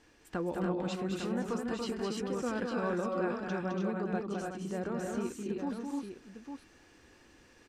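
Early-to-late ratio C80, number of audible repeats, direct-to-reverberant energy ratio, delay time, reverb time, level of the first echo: none, 3, none, 0.211 s, none, -5.0 dB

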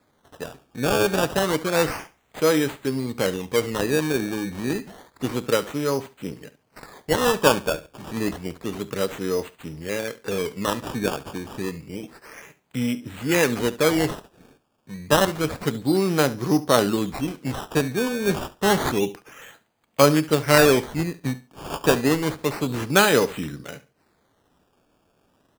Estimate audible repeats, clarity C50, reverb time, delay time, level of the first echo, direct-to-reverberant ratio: 2, none, none, 70 ms, -17.5 dB, none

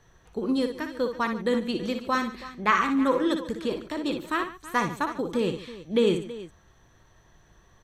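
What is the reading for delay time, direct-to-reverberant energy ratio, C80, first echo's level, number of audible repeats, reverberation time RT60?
59 ms, none, none, -8.0 dB, 3, none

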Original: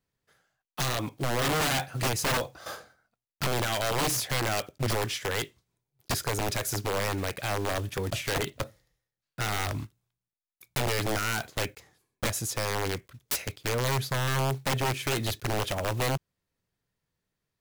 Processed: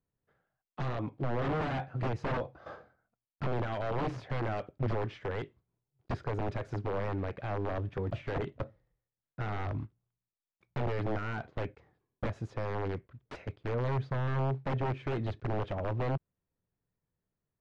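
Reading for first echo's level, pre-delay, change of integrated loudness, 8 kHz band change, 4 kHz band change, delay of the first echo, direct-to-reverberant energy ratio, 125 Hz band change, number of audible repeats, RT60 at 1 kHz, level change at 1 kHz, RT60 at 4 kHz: none, none, -6.0 dB, under -30 dB, -19.5 dB, none, none, -2.0 dB, none, none, -6.0 dB, none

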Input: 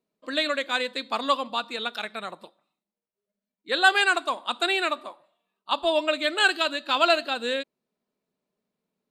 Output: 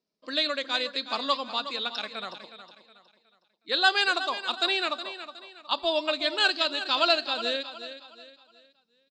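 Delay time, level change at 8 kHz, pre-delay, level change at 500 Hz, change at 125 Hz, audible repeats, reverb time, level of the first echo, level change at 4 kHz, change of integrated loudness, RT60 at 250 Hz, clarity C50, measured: 0.366 s, -6.0 dB, none, -3.5 dB, n/a, 3, none, -12.0 dB, +1.5 dB, -2.0 dB, none, none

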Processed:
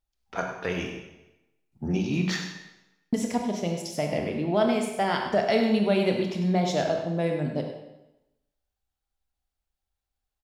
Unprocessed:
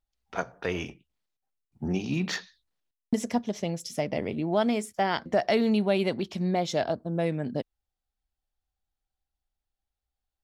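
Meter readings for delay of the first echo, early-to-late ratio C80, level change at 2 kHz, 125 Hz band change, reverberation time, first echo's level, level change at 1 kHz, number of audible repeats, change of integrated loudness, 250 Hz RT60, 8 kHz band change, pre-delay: 0.1 s, 6.0 dB, +2.0 dB, +3.0 dB, 0.95 s, -11.0 dB, +1.5 dB, 1, +2.0 dB, 0.95 s, +2.0 dB, 22 ms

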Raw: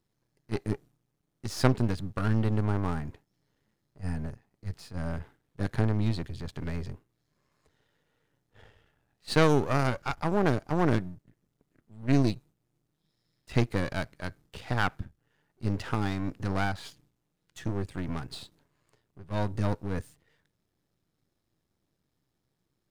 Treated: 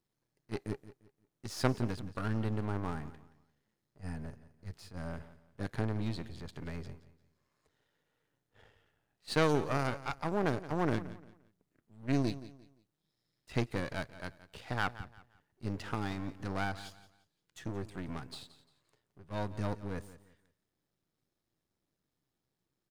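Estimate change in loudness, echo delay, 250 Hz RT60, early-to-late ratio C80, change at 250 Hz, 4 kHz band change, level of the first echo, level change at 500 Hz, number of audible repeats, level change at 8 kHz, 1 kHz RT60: -6.5 dB, 0.174 s, none, none, -6.5 dB, -5.0 dB, -16.0 dB, -5.5 dB, 2, -5.0 dB, none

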